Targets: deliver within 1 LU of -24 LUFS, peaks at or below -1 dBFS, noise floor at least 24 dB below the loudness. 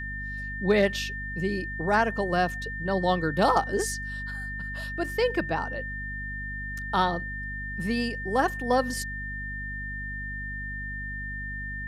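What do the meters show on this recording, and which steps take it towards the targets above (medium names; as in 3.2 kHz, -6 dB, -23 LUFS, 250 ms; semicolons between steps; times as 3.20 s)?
hum 50 Hz; highest harmonic 250 Hz; hum level -35 dBFS; steady tone 1.8 kHz; tone level -34 dBFS; loudness -28.5 LUFS; peak level -10.0 dBFS; loudness target -24.0 LUFS
-> hum notches 50/100/150/200/250 Hz; band-stop 1.8 kHz, Q 30; trim +4.5 dB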